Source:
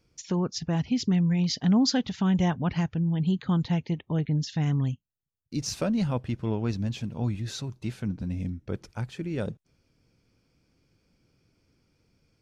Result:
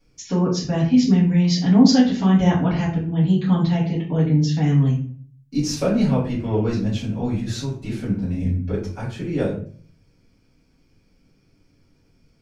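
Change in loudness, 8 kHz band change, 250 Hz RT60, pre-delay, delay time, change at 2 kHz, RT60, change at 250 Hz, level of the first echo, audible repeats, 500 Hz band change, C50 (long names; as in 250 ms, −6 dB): +8.0 dB, can't be measured, 0.60 s, 3 ms, no echo audible, +6.0 dB, 0.45 s, +8.5 dB, no echo audible, no echo audible, +9.0 dB, 6.0 dB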